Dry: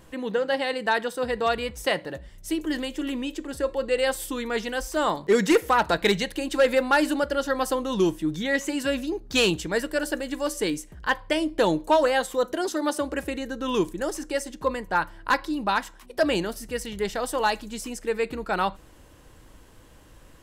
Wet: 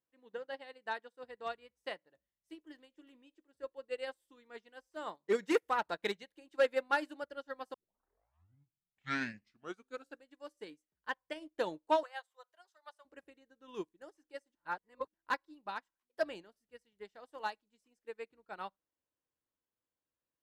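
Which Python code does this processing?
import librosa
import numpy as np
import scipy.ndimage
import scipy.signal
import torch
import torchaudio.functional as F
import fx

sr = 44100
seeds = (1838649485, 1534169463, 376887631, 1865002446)

y = fx.highpass(x, sr, hz=680.0, slope=24, at=(12.03, 13.05))
y = fx.edit(y, sr, fx.tape_start(start_s=7.74, length_s=2.53),
    fx.reverse_span(start_s=14.55, length_s=0.59), tone=tone)
y = fx.highpass(y, sr, hz=270.0, slope=6)
y = fx.high_shelf(y, sr, hz=5600.0, db=-7.5)
y = fx.upward_expand(y, sr, threshold_db=-39.0, expansion=2.5)
y = F.gain(torch.from_numpy(y), -7.0).numpy()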